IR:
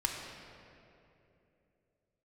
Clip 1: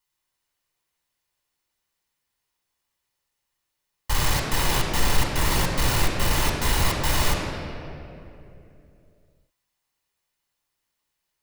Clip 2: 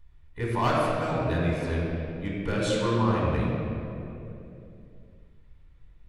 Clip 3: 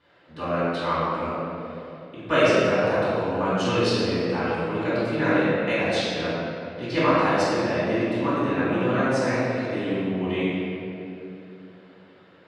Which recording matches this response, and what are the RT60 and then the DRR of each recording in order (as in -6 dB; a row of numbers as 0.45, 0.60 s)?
1; 2.9, 2.9, 2.9 s; 0.0, -4.5, -12.0 dB